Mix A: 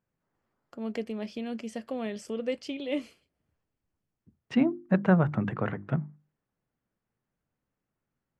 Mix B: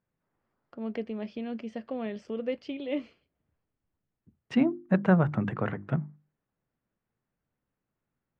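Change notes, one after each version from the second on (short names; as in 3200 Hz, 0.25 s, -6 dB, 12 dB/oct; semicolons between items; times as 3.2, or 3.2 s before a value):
first voice: add air absorption 220 m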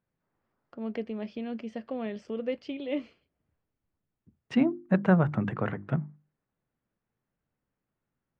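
none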